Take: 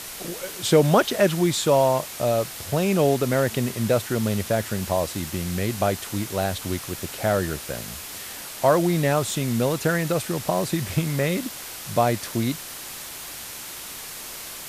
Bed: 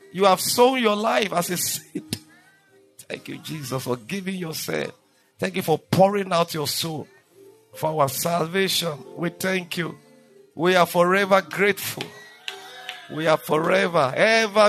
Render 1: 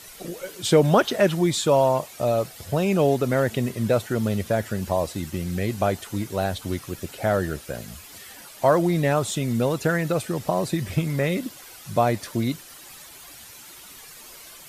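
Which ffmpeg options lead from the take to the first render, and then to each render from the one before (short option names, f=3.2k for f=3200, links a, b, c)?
-af "afftdn=nr=11:nf=-37"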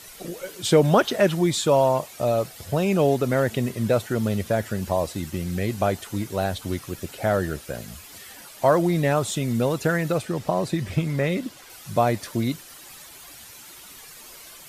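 -filter_complex "[0:a]asettb=1/sr,asplit=3[a][b][c];[a]atrim=end=10.184[d];[b]atrim=start=10.18:end=11.7,asetpts=PTS-STARTPTS,afade=t=in:d=0.004:c=qsin,afade=t=out:st=1.516:d=0.004:c=qsin,highshelf=f=8.6k:g=-8.5[e];[c]atrim=start=11.696[f];[d][e]acrossfade=d=0.004:c1=hsin:c2=qsin[g];[g][f]acrossfade=d=0.004:c1=qsin:c2=hsin"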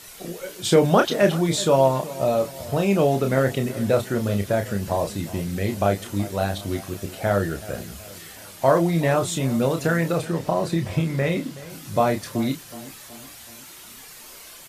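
-filter_complex "[0:a]asplit=2[a][b];[b]adelay=30,volume=-6dB[c];[a][c]amix=inputs=2:normalize=0,asplit=2[d][e];[e]adelay=374,lowpass=f=2k:p=1,volume=-17dB,asplit=2[f][g];[g]adelay=374,lowpass=f=2k:p=1,volume=0.51,asplit=2[h][i];[i]adelay=374,lowpass=f=2k:p=1,volume=0.51,asplit=2[j][k];[k]adelay=374,lowpass=f=2k:p=1,volume=0.51[l];[d][f][h][j][l]amix=inputs=5:normalize=0"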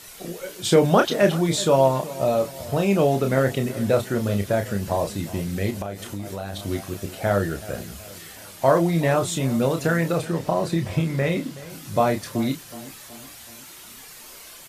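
-filter_complex "[0:a]asettb=1/sr,asplit=3[a][b][c];[a]atrim=end=5.704[d];[b]atrim=start=5.7:end=6.59,asetpts=PTS-STARTPTS,afade=t=in:d=0.004:c=qsin,afade=t=out:st=0.886:d=0.004:c=qsin,acompressor=threshold=-26dB:ratio=8:attack=3.2:release=140:knee=1:detection=peak[e];[c]atrim=start=6.586[f];[d][e]acrossfade=d=0.004:c1=hsin:c2=qsin[g];[g][f]acrossfade=d=0.004:c1=qsin:c2=hsin"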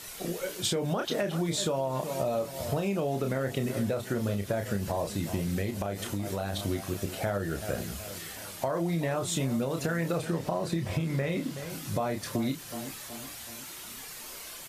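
-af "alimiter=limit=-15dB:level=0:latency=1:release=272,acompressor=threshold=-26dB:ratio=6"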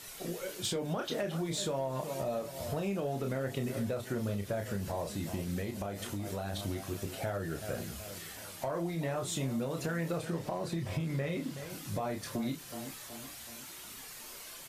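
-af "asoftclip=type=tanh:threshold=-19dB,flanger=delay=7.2:depth=7.6:regen=-66:speed=0.27:shape=sinusoidal"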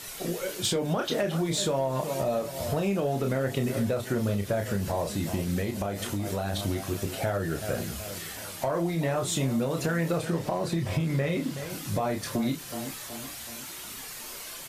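-af "volume=7dB"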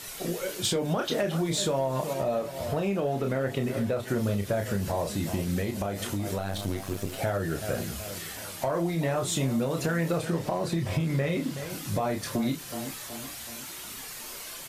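-filter_complex "[0:a]asettb=1/sr,asplit=3[a][b][c];[a]atrim=end=2.134[d];[b]atrim=start=2.13:end=4.08,asetpts=PTS-STARTPTS,afade=t=in:d=0.004:c=qsin,afade=t=out:st=1.946:d=0.004:c=qsin,bass=f=250:g=-2,treble=f=4k:g=-6[e];[c]atrim=start=4.076[f];[d][e]acrossfade=d=0.004:c1=hsin:c2=qsin[g];[g][f]acrossfade=d=0.004:c1=qsin:c2=hsin,asettb=1/sr,asplit=3[h][i][j];[h]atrim=end=6.384[k];[i]atrim=start=6.38:end=7.19,asetpts=PTS-STARTPTS,afade=t=in:d=0.004:c=qsin,afade=t=out:st=0.806:d=0.004:c=qsin,aeval=exprs='if(lt(val(0),0),0.447*val(0),val(0))':c=same[l];[j]atrim=start=7.186[m];[k][l]acrossfade=d=0.004:c1=hsin:c2=qsin[n];[n][m]acrossfade=d=0.004:c1=qsin:c2=hsin"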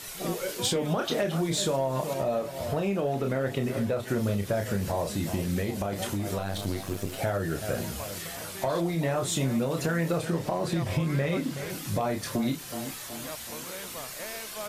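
-filter_complex "[1:a]volume=-23dB[a];[0:a][a]amix=inputs=2:normalize=0"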